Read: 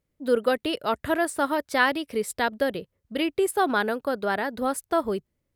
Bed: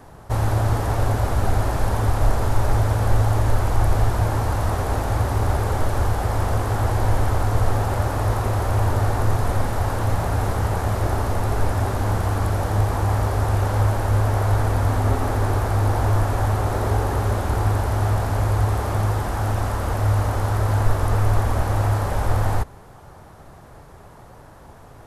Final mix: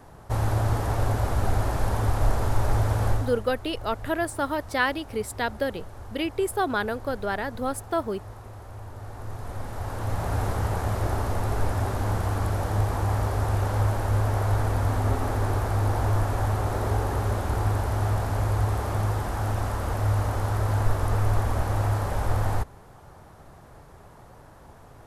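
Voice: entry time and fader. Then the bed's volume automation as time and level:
3.00 s, −2.5 dB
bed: 0:03.09 −4 dB
0:03.46 −20.5 dB
0:08.91 −20.5 dB
0:10.34 −4.5 dB

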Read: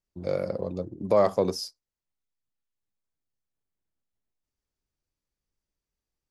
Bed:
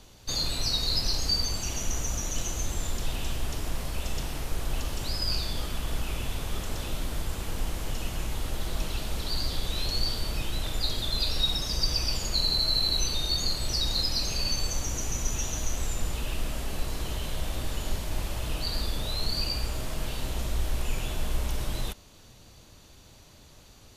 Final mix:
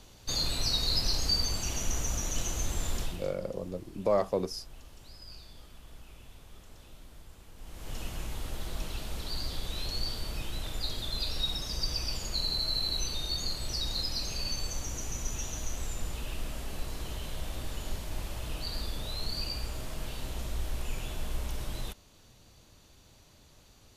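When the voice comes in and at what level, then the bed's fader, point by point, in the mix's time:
2.95 s, −5.5 dB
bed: 0:03.01 −1.5 dB
0:03.35 −19.5 dB
0:07.55 −19.5 dB
0:07.96 −5.5 dB

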